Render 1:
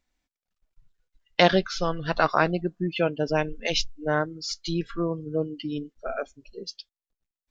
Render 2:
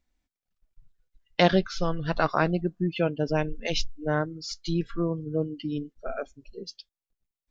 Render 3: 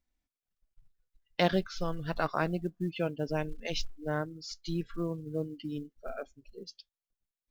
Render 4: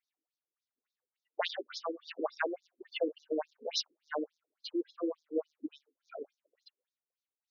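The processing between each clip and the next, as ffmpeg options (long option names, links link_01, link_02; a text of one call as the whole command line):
ffmpeg -i in.wav -af "lowshelf=frequency=320:gain=7.5,volume=-4dB" out.wav
ffmpeg -i in.wav -af "acrusher=bits=9:mode=log:mix=0:aa=0.000001,volume=-6.5dB" out.wav
ffmpeg -i in.wav -af "afftfilt=real='re*between(b*sr/1024,330*pow(5000/330,0.5+0.5*sin(2*PI*3.5*pts/sr))/1.41,330*pow(5000/330,0.5+0.5*sin(2*PI*3.5*pts/sr))*1.41)':imag='im*between(b*sr/1024,330*pow(5000/330,0.5+0.5*sin(2*PI*3.5*pts/sr))/1.41,330*pow(5000/330,0.5+0.5*sin(2*PI*3.5*pts/sr))*1.41)':win_size=1024:overlap=0.75,volume=4.5dB" out.wav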